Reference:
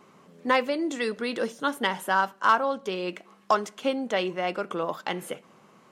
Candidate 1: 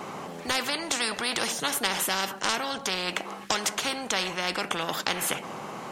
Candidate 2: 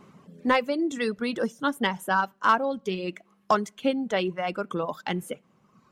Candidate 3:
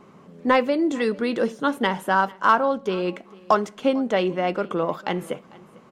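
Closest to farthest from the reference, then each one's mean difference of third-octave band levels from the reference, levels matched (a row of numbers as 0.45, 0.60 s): 3, 2, 1; 3.5, 4.5, 13.0 dB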